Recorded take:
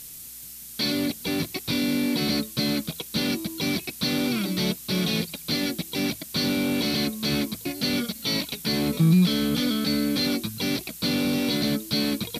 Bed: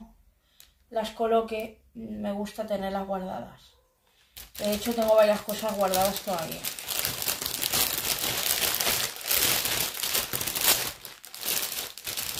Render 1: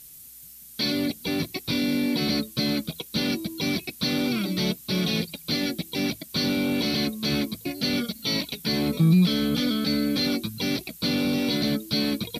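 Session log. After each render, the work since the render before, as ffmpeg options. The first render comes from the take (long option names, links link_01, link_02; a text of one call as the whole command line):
ffmpeg -i in.wav -af "afftdn=noise_reduction=8:noise_floor=-41" out.wav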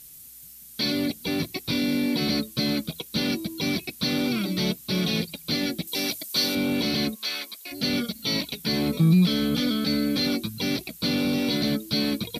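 ffmpeg -i in.wav -filter_complex "[0:a]asettb=1/sr,asplit=3[link_01][link_02][link_03];[link_01]atrim=end=5.874[link_04];[link_02]atrim=start=5.87:end=6.55,asetpts=PTS-STARTPTS,afade=type=in:duration=0.004:curve=qsin,afade=type=out:start_time=0.676:duration=0.004:curve=qsin,bass=frequency=250:gain=-12,treble=frequency=4000:gain=8[link_05];[link_03]atrim=start=6.546[link_06];[link_04][link_05]acrossfade=duration=0.004:curve1=hsin:curve2=qsin[link_07];[link_07][link_06]acrossfade=duration=0.004:curve1=qsin:curve2=hsin,asplit=3[link_08][link_09][link_10];[link_08]afade=type=out:start_time=7.14:duration=0.02[link_11];[link_09]highpass=1000,afade=type=in:start_time=7.14:duration=0.02,afade=type=out:start_time=7.71:duration=0.02[link_12];[link_10]afade=type=in:start_time=7.71:duration=0.02[link_13];[link_11][link_12][link_13]amix=inputs=3:normalize=0" out.wav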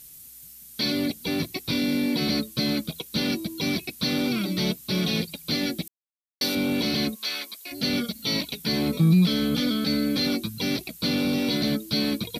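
ffmpeg -i in.wav -filter_complex "[0:a]asplit=3[link_01][link_02][link_03];[link_01]atrim=end=5.88,asetpts=PTS-STARTPTS,afade=type=out:start_time=5.876:duration=0.004:curve=hsin[link_04];[link_02]atrim=start=5.88:end=6.41,asetpts=PTS-STARTPTS,volume=0[link_05];[link_03]atrim=start=6.41,asetpts=PTS-STARTPTS,afade=type=in:duration=0.004:curve=hsin[link_06];[link_04][link_05][link_06]concat=n=3:v=0:a=1" out.wav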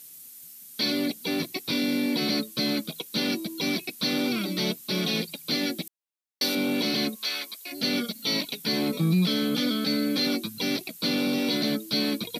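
ffmpeg -i in.wav -af "highpass=210" out.wav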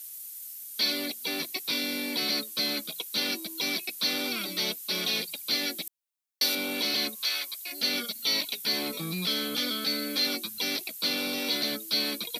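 ffmpeg -i in.wav -af "highpass=frequency=800:poles=1,highshelf=frequency=7500:gain=5.5" out.wav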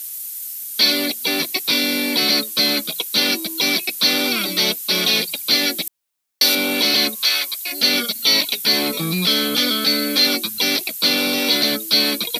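ffmpeg -i in.wav -af "volume=11.5dB,alimiter=limit=-3dB:level=0:latency=1" out.wav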